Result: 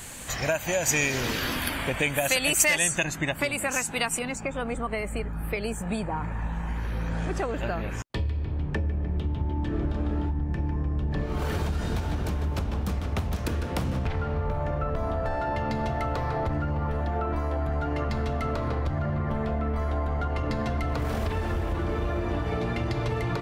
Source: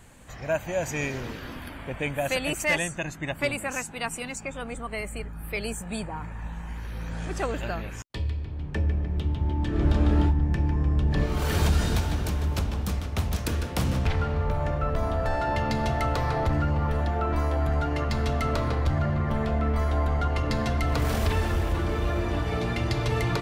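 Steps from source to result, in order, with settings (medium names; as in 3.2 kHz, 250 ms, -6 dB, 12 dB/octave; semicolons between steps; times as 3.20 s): bass shelf 150 Hz -3 dB; compression 10:1, threshold -32 dBFS, peak gain reduction 14 dB; treble shelf 2.5 kHz +11.5 dB, from 3.04 s +4 dB, from 4.19 s -8.5 dB; trim +8 dB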